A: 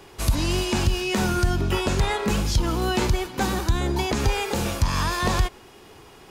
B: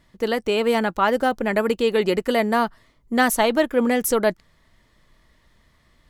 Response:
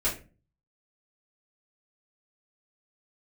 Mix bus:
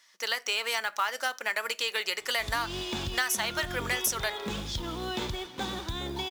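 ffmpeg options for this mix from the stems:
-filter_complex "[0:a]lowpass=7.2k,equalizer=f=3.5k:t=o:w=0.21:g=14,adelay=2200,volume=-9.5dB[a];[1:a]highpass=1.4k,equalizer=f=5.8k:t=o:w=0.47:g=12,volume=2.5dB,asplit=2[b][c];[c]volume=-23.5dB[d];[2:a]atrim=start_sample=2205[e];[d][e]afir=irnorm=-1:irlink=0[f];[a][b][f]amix=inputs=3:normalize=0,lowshelf=f=120:g=-8,acrusher=bits=5:mode=log:mix=0:aa=0.000001,acompressor=threshold=-25dB:ratio=6"

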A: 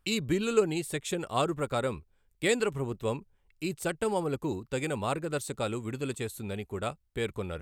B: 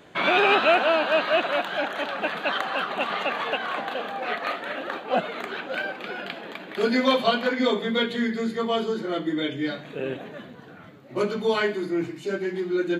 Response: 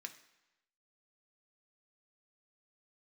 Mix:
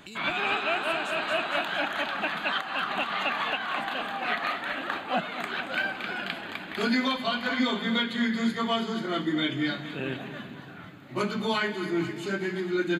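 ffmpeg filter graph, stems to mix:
-filter_complex "[0:a]asubboost=boost=8:cutoff=52,acompressor=threshold=-37dB:ratio=4,volume=-6dB,afade=t=out:st=1.15:d=0.52:silence=0.237137,asplit=3[a][b][c];[b]volume=-5.5dB[d];[1:a]equalizer=f=480:w=1.9:g=-12.5,bandreject=f=5.7k:w=12,volume=2.5dB,asplit=2[e][f];[f]volume=-14dB[g];[c]apad=whole_len=573016[h];[e][h]sidechaincompress=threshold=-53dB:ratio=3:attack=20:release=279[i];[d][g]amix=inputs=2:normalize=0,aecho=0:1:228|456|684|912|1140|1368|1596|1824|2052|2280:1|0.6|0.36|0.216|0.13|0.0778|0.0467|0.028|0.0168|0.0101[j];[a][i][j]amix=inputs=3:normalize=0,alimiter=limit=-16dB:level=0:latency=1:release=387"

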